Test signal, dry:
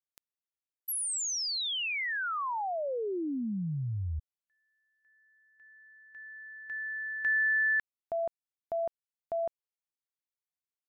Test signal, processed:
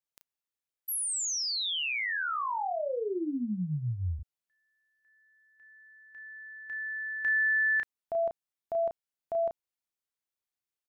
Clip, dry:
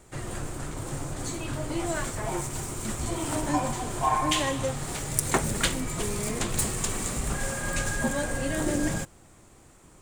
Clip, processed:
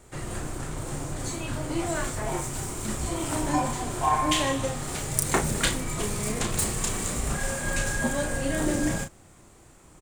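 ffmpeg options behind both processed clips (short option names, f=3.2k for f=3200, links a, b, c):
-filter_complex "[0:a]asplit=2[a][b];[b]adelay=33,volume=-5.5dB[c];[a][c]amix=inputs=2:normalize=0"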